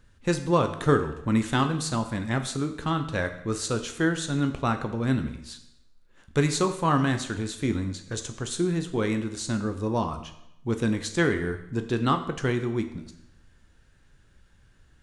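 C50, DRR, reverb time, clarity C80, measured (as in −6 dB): 10.5 dB, 7.0 dB, 0.85 s, 13.0 dB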